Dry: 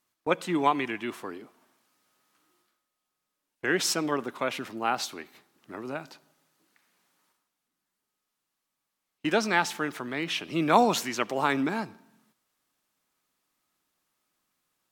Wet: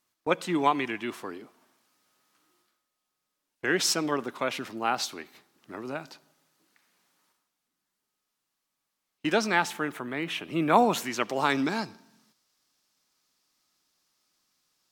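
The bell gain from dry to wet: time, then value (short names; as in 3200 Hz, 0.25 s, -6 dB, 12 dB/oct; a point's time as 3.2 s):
bell 5100 Hz 0.95 oct
9.33 s +2.5 dB
10 s -9 dB
10.87 s -9 dB
11.17 s 0 dB
11.61 s +11.5 dB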